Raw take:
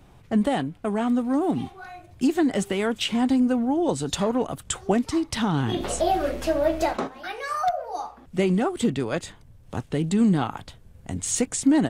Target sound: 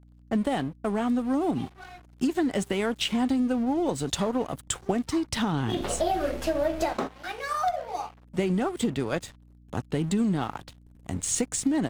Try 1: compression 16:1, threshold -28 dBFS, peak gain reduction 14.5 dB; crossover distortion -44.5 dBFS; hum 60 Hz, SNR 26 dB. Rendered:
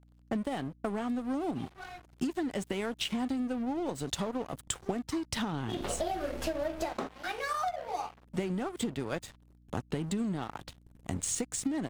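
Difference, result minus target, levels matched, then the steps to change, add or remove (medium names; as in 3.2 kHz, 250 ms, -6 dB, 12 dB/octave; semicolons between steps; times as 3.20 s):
compression: peak gain reduction +7 dB
change: compression 16:1, threshold -20.5 dBFS, peak gain reduction 7.5 dB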